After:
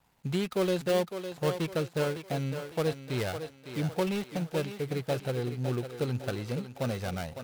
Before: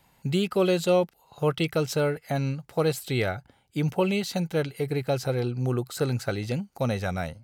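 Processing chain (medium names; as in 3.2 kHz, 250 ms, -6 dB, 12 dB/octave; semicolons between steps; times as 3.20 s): dead-time distortion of 0.19 ms; thinning echo 556 ms, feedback 44%, high-pass 260 Hz, level -8 dB; trim -5 dB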